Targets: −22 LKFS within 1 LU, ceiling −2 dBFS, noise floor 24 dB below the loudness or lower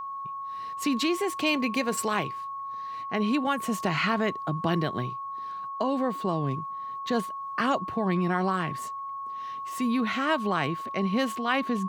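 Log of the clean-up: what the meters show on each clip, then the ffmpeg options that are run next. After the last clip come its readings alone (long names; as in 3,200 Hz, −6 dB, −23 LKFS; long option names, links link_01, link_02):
interfering tone 1,100 Hz; level of the tone −33 dBFS; integrated loudness −28.5 LKFS; sample peak −12.0 dBFS; target loudness −22.0 LKFS
→ -af "bandreject=frequency=1100:width=30"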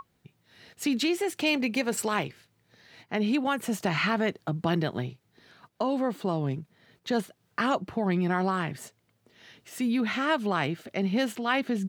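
interfering tone none found; integrated loudness −28.5 LKFS; sample peak −12.5 dBFS; target loudness −22.0 LKFS
→ -af "volume=6.5dB"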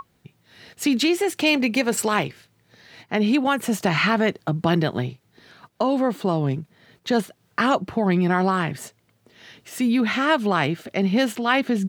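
integrated loudness −22.0 LKFS; sample peak −6.0 dBFS; background noise floor −65 dBFS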